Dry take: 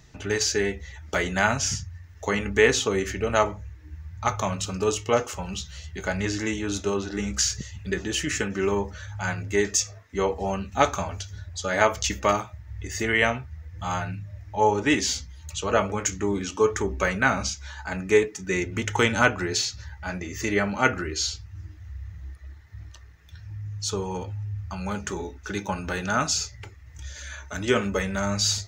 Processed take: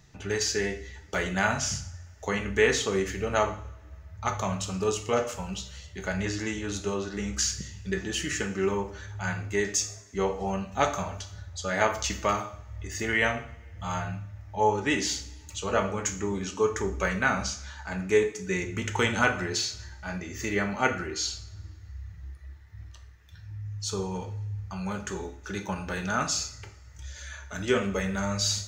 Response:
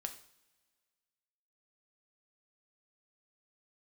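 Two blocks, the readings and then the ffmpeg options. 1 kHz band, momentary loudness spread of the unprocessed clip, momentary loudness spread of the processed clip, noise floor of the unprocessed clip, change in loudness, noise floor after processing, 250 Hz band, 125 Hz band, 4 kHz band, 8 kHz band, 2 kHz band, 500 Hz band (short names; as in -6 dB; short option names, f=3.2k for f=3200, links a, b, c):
-3.5 dB, 16 LU, 16 LU, -47 dBFS, -3.5 dB, -48 dBFS, -3.0 dB, -2.5 dB, -3.5 dB, -3.5 dB, -3.0 dB, -3.5 dB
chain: -filter_complex "[1:a]atrim=start_sample=2205[a];[0:a][a]afir=irnorm=-1:irlink=0,volume=-1.5dB"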